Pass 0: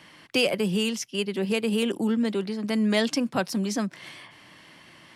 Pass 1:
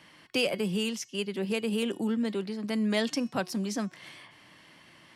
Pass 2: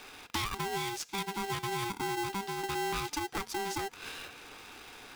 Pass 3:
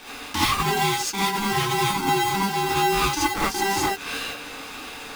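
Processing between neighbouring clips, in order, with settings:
de-hum 364.9 Hz, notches 23; gain -4.5 dB
compressor 3:1, threshold -42 dBFS, peak gain reduction 14.5 dB; polarity switched at an audio rate 590 Hz; gain +6 dB
non-linear reverb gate 0.1 s rising, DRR -8 dB; gain +4.5 dB

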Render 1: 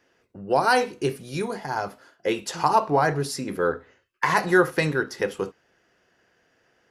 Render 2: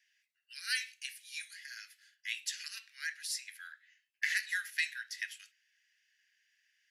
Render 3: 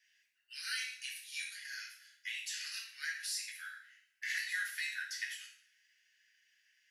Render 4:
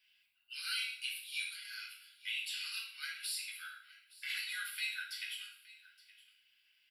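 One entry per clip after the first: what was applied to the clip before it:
steep high-pass 1700 Hz 72 dB/oct; gain -4.5 dB
limiter -29.5 dBFS, peak gain reduction 11 dB; two-slope reverb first 0.5 s, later 1.5 s, from -26 dB, DRR -2.5 dB; gain -2 dB
fixed phaser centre 1800 Hz, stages 6; echo 0.869 s -20 dB; gain +5.5 dB

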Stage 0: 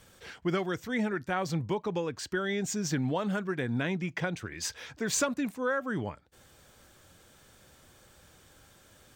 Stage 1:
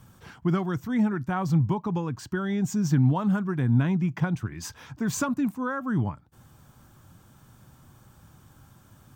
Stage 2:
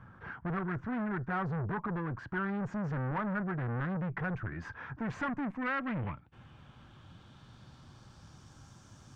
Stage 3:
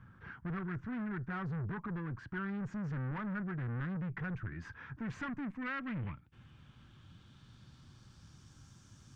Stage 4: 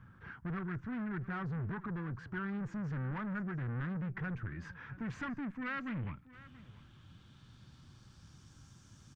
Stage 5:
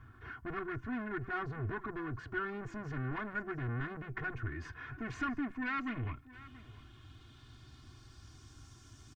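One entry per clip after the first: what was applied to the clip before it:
graphic EQ 125/250/500/1000/2000/4000/8000 Hz +10/+4/-10/+6/-8/-7/-5 dB; gain +3 dB
tube stage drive 33 dB, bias 0.35; low-pass sweep 1600 Hz -> 5900 Hz, 4.86–8.65
bell 700 Hz -10 dB 1.6 oct; gain -2 dB
echo 0.679 s -18.5 dB
comb 2.8 ms, depth 95%; gain +1 dB

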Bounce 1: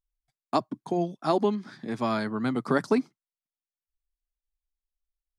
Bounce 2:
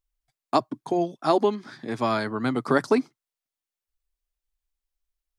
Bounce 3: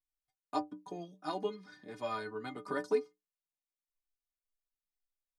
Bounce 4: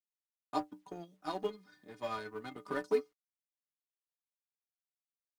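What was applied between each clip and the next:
bell 190 Hz -9 dB 0.49 oct; gain +4 dB
metallic resonator 89 Hz, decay 0.31 s, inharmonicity 0.03; gain -4 dB
G.711 law mismatch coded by A; gain +1 dB

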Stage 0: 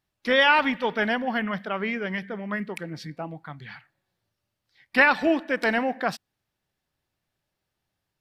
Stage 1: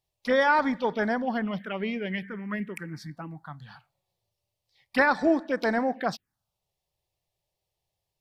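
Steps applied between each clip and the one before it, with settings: envelope phaser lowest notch 250 Hz, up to 2800 Hz, full sweep at -21.5 dBFS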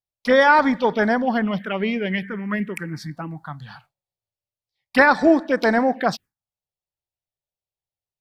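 gate with hold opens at -41 dBFS; gain +7.5 dB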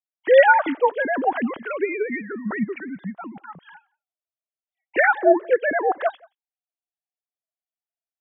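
sine-wave speech; outdoor echo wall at 30 m, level -28 dB; gain -1 dB

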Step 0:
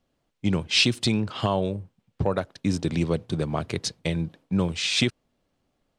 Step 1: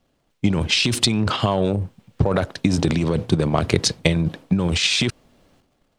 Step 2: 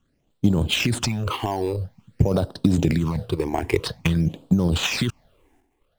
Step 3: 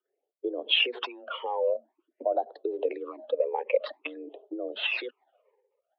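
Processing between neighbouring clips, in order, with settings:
in parallel at +2.5 dB: negative-ratio compressor -25 dBFS, ratio -0.5; on the sum: transient shaper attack +8 dB, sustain +12 dB; gain -4 dB
phaser stages 8, 0.49 Hz, lowest notch 160–2200 Hz; in parallel at -7 dB: decimation with a swept rate 8×, swing 60% 1.3 Hz; on the sum: gain -3.5 dB
spectral contrast raised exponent 1.7; rotary speaker horn 0.9 Hz; mistuned SSB +130 Hz 340–3200 Hz; gain +2 dB

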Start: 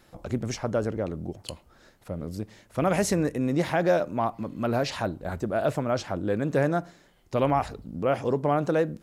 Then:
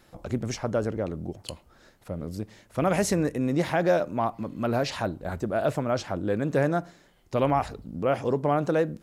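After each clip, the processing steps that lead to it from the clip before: nothing audible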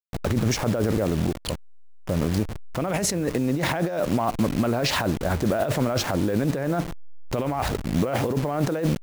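level-crossing sampler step -39 dBFS; negative-ratio compressor -31 dBFS, ratio -1; limiter -23 dBFS, peak gain reduction 8.5 dB; gain +9 dB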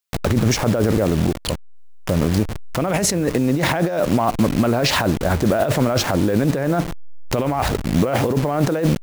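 mismatched tape noise reduction encoder only; gain +5.5 dB

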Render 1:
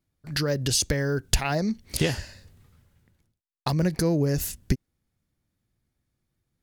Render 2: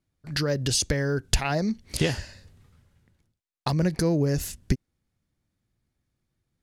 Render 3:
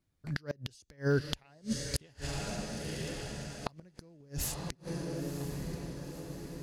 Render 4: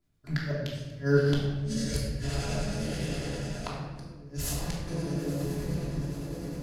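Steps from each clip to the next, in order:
Bessel low-pass 10000 Hz, order 2
diffused feedback echo 1.001 s, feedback 56%, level -12 dB; flipped gate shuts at -15 dBFS, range -33 dB; gain -1 dB
harmonic tremolo 9.7 Hz, depth 50%, crossover 1100 Hz; reverb RT60 1.3 s, pre-delay 3 ms, DRR -5.5 dB

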